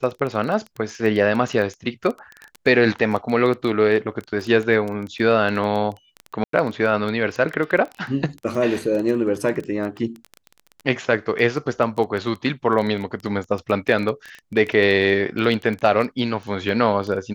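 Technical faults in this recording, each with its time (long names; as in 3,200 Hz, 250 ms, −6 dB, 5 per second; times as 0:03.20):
surface crackle 13 per second −25 dBFS
0:06.44–0:06.53: drop-out 93 ms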